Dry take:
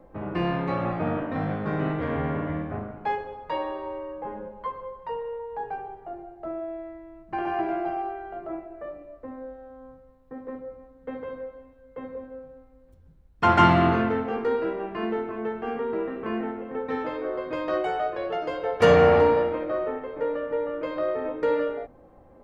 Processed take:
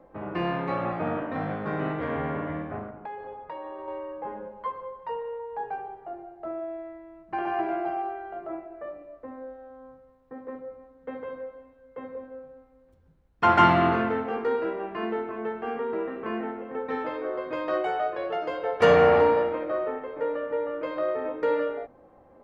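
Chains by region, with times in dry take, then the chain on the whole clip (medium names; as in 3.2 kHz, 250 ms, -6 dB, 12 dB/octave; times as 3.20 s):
2.90–3.88 s: low-pass 1.7 kHz 6 dB/octave + compression 10:1, threshold -33 dBFS
whole clip: low-pass 1.4 kHz 6 dB/octave; tilt EQ +2.5 dB/octave; trim +2 dB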